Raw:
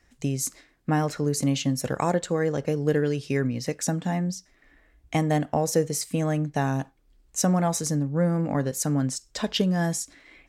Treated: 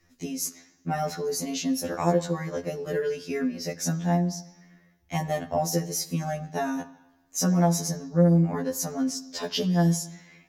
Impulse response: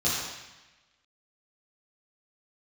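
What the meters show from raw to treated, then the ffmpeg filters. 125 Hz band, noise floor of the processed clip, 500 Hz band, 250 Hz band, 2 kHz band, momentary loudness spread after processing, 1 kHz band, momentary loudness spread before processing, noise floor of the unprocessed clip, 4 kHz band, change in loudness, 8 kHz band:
-1.0 dB, -64 dBFS, -1.5 dB, -0.5 dB, -3.0 dB, 10 LU, -1.0 dB, 7 LU, -63 dBFS, -0.5 dB, -1.0 dB, -1.0 dB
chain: -filter_complex "[0:a]aexciter=amount=1.5:drive=1.9:freq=4.8k,asplit=2[a][b];[1:a]atrim=start_sample=2205,lowpass=5.5k[c];[b][c]afir=irnorm=-1:irlink=0,volume=-25.5dB[d];[a][d]amix=inputs=2:normalize=0,afftfilt=real='re*2*eq(mod(b,4),0)':imag='im*2*eq(mod(b,4),0)':win_size=2048:overlap=0.75"

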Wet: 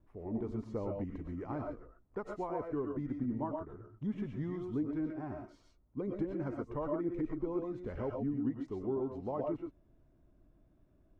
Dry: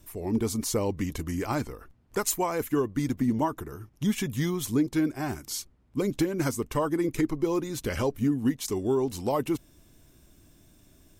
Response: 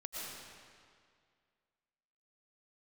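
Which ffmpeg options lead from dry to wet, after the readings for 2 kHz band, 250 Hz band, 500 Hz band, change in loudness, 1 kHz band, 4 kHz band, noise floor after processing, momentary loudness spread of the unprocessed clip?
-17.0 dB, -9.0 dB, -8.5 dB, -9.5 dB, -10.5 dB, under -25 dB, -67 dBFS, 7 LU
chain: -filter_complex "[0:a]lowpass=1.1k[a];[1:a]atrim=start_sample=2205,atrim=end_sample=6174[b];[a][b]afir=irnorm=-1:irlink=0,volume=-4.5dB"

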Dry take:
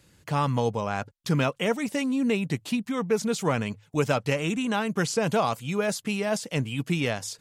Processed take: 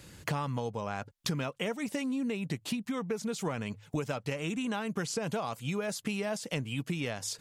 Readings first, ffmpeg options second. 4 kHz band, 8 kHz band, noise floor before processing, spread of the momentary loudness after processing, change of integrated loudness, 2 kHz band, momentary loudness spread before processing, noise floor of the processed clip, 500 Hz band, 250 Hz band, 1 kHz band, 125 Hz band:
-5.5 dB, -4.5 dB, -61 dBFS, 2 LU, -7.5 dB, -7.5 dB, 4 LU, -60 dBFS, -8.5 dB, -7.0 dB, -9.0 dB, -7.5 dB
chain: -af "acompressor=threshold=-38dB:ratio=12,volume=7.5dB"

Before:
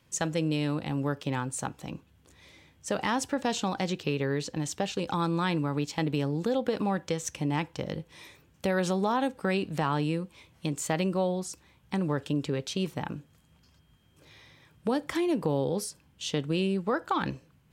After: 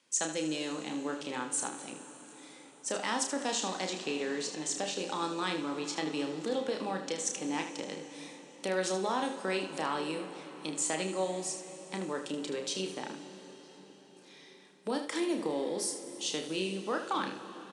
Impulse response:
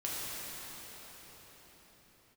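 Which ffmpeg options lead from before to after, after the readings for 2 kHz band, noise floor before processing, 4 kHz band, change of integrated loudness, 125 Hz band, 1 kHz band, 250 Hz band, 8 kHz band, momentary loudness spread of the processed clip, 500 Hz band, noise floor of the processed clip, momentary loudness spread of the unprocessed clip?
-2.5 dB, -63 dBFS, +0.5 dB, -4.0 dB, -16.0 dB, -4.0 dB, -6.5 dB, +3.5 dB, 14 LU, -4.0 dB, -56 dBFS, 10 LU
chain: -filter_complex "[0:a]highshelf=f=4k:g=10.5,aecho=1:1:32|77:0.473|0.335,asplit=2[a][b];[1:a]atrim=start_sample=2205,adelay=98[c];[b][c]afir=irnorm=-1:irlink=0,volume=-15.5dB[d];[a][d]amix=inputs=2:normalize=0,aresample=22050,aresample=44100,highpass=f=230:w=0.5412,highpass=f=230:w=1.3066,volume=-6dB"

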